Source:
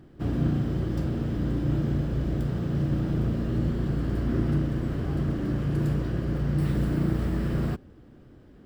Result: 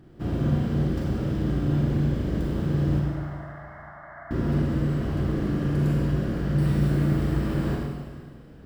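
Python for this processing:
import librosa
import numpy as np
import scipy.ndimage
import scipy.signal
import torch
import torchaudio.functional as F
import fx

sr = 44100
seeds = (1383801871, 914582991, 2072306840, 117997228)

p1 = fx.brickwall_bandpass(x, sr, low_hz=580.0, high_hz=2200.0, at=(2.99, 4.31))
p2 = p1 + fx.echo_feedback(p1, sr, ms=446, feedback_pct=52, wet_db=-22, dry=0)
p3 = fx.rev_schroeder(p2, sr, rt60_s=1.6, comb_ms=32, drr_db=-2.0)
y = F.gain(torch.from_numpy(p3), -1.0).numpy()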